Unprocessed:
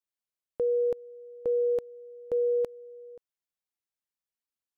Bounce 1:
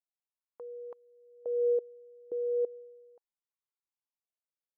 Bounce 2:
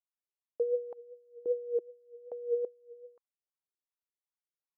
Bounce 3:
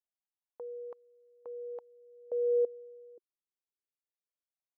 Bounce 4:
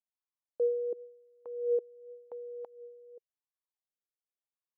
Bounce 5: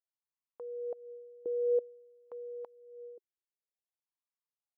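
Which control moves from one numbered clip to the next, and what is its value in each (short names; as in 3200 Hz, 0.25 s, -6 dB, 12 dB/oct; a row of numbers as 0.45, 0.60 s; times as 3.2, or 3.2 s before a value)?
wah, rate: 0.34, 2.6, 0.22, 0.91, 0.52 Hz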